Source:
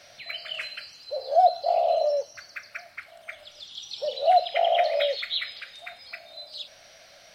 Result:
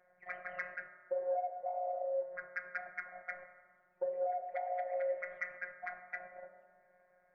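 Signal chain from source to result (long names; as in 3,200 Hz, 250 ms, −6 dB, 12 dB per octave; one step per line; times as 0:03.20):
Butterworth low-pass 2,000 Hz 72 dB per octave
noise gate −49 dBFS, range −17 dB
downward compressor 10 to 1, threshold −36 dBFS, peak gain reduction 22 dB
phases set to zero 180 Hz
soft clipping −25.5 dBFS, distortion −32 dB
convolution reverb RT60 1.7 s, pre-delay 3 ms, DRR 6.5 dB
level +4.5 dB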